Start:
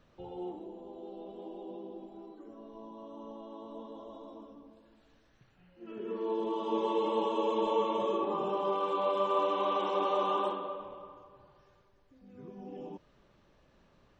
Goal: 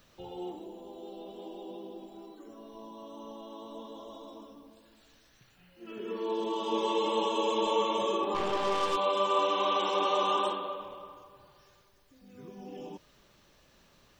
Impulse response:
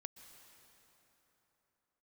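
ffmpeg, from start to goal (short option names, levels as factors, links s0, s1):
-filter_complex "[0:a]crystalizer=i=5.5:c=0,asplit=3[s0][s1][s2];[s0]afade=t=out:st=8.34:d=0.02[s3];[s1]aeval=exprs='0.112*(cos(1*acos(clip(val(0)/0.112,-1,1)))-cos(1*PI/2))+0.0126*(cos(8*acos(clip(val(0)/0.112,-1,1)))-cos(8*PI/2))':c=same,afade=t=in:st=8.34:d=0.02,afade=t=out:st=8.95:d=0.02[s4];[s2]afade=t=in:st=8.95:d=0.02[s5];[s3][s4][s5]amix=inputs=3:normalize=0"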